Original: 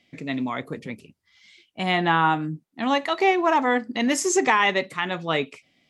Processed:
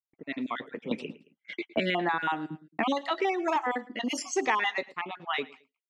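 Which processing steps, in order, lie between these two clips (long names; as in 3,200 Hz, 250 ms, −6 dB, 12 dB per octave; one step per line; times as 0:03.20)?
time-frequency cells dropped at random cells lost 39%
camcorder AGC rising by 10 dB per second
low-pass that shuts in the quiet parts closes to 990 Hz, open at −16.5 dBFS
high-pass filter 260 Hz 12 dB per octave
noise gate −48 dBFS, range −51 dB
repeating echo 110 ms, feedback 29%, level −21.5 dB
0:00.91–0:03.56: multiband upward and downward compressor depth 100%
level −6.5 dB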